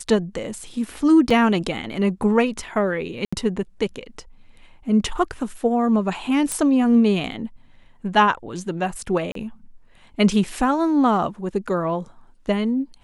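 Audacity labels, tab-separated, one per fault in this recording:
1.300000	1.300000	gap 4.7 ms
3.250000	3.330000	gap 75 ms
6.520000	6.520000	pop -10 dBFS
9.320000	9.350000	gap 33 ms

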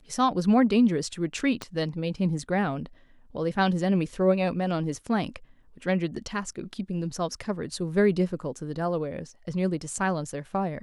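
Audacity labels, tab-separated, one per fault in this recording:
1.620000	1.620000	pop -18 dBFS

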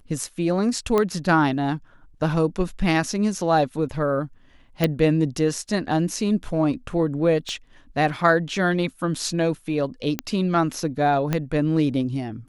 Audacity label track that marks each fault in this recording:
0.980000	0.980000	pop -9 dBFS
4.840000	4.840000	pop
7.490000	7.490000	pop -20 dBFS
10.190000	10.190000	pop -8 dBFS
11.330000	11.330000	pop -9 dBFS

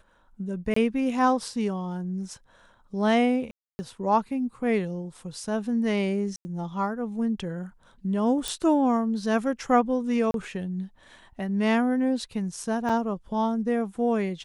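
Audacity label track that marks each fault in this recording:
0.740000	0.760000	gap 24 ms
3.510000	3.790000	gap 0.28 s
6.360000	6.450000	gap 90 ms
8.480000	8.480000	pop
10.310000	10.340000	gap 32 ms
12.890000	12.900000	gap 5.4 ms

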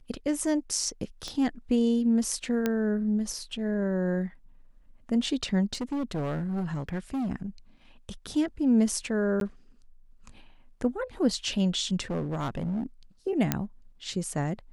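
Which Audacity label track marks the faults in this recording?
1.280000	1.280000	pop -24 dBFS
2.660000	2.660000	pop -13 dBFS
5.730000	7.300000	clipped -27 dBFS
9.400000	9.410000	gap 12 ms
12.100000	12.860000	clipped -26.5 dBFS
13.520000	13.520000	pop -8 dBFS

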